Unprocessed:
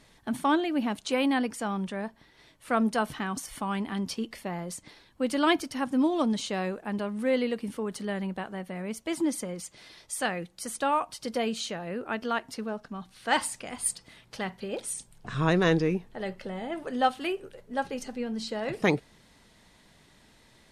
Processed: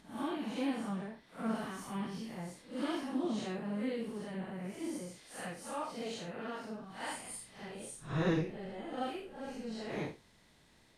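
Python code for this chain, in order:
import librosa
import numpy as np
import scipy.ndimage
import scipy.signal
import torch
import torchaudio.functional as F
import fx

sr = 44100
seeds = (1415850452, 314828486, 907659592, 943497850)

y = fx.spec_blur(x, sr, span_ms=254.0)
y = fx.stretch_vocoder_free(y, sr, factor=0.53)
y = y * librosa.db_to_amplitude(-1.5)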